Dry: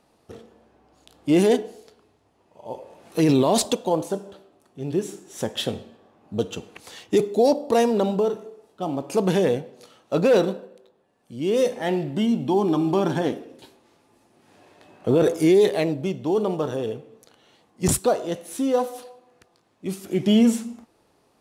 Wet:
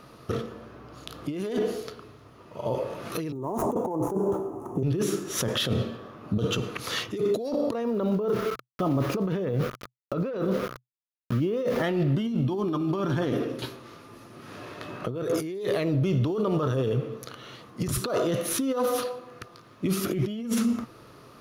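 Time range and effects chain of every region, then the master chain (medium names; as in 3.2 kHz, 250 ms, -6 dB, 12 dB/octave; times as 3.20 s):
3.32–4.83 s: dead-time distortion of 0.098 ms + FFT filter 220 Hz 0 dB, 360 Hz +7 dB, 590 Hz -3 dB, 850 Hz +12 dB, 1.4 kHz -13 dB, 3 kHz -24 dB, 4.5 kHz -30 dB, 6.8 kHz -4 dB, 12 kHz -8 dB + three bands compressed up and down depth 40%
7.73–11.84 s: low-pass 1.5 kHz 6 dB/octave + small samples zeroed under -42.5 dBFS
whole clip: graphic EQ with 31 bands 125 Hz +11 dB, 800 Hz -10 dB, 1.25 kHz +10 dB, 8 kHz -12 dB; compressor with a negative ratio -30 dBFS, ratio -1; peak limiter -22.5 dBFS; trim +5 dB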